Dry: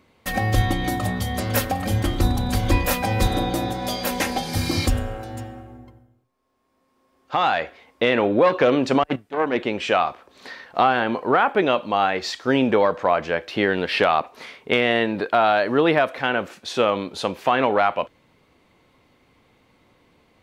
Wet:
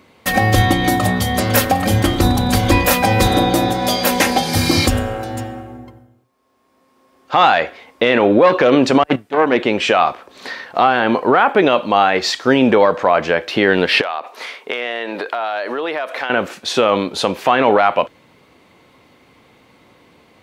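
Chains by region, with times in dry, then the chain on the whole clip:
14.01–16.30 s: high-pass 430 Hz + compression, threshold -28 dBFS
whole clip: high-pass 120 Hz 6 dB/octave; loudness maximiser +10.5 dB; trim -1 dB

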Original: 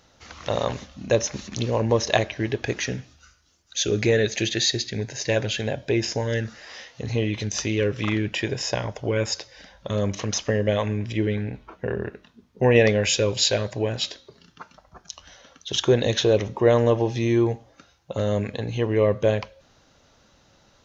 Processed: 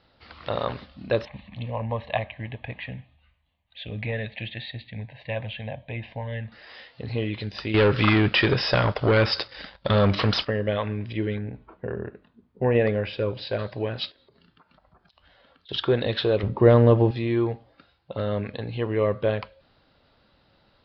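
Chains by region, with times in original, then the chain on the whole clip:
1.25–6.52 s: distance through air 160 m + static phaser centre 1.4 kHz, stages 6
7.74–10.45 s: treble shelf 5.1 kHz +9 dB + waveshaping leveller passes 3
11.38–13.59 s: low-pass 1.2 kHz 6 dB/octave + delay 75 ms -21.5 dB
14.10–15.69 s: low-pass 3.1 kHz 6 dB/octave + compression 10:1, threshold -49 dBFS
16.43–17.11 s: median filter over 9 samples + bass shelf 400 Hz +11 dB
whole clip: steep low-pass 4.9 kHz 96 dB/octave; dynamic bell 1.3 kHz, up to +7 dB, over -45 dBFS, Q 2.9; trim -3.5 dB

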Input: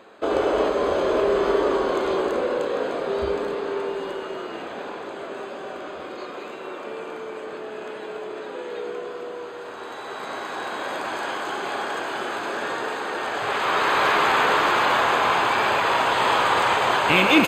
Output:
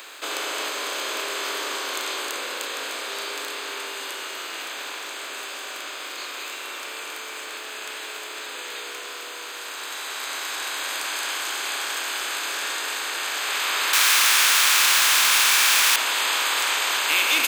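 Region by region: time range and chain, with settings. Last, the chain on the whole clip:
13.93–15.96 s: high-pass 1.1 kHz + overdrive pedal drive 31 dB, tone 6.6 kHz, clips at -11 dBFS
whole clip: spectral levelling over time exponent 0.6; Chebyshev high-pass 250 Hz, order 5; differentiator; trim +5.5 dB

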